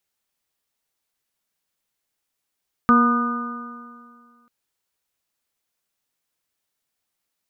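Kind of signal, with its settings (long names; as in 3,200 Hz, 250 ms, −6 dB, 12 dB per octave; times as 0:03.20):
stiff-string partials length 1.59 s, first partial 237 Hz, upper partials −12/−18.5/−14/1/−10 dB, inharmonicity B 0.0025, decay 2.04 s, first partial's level −13.5 dB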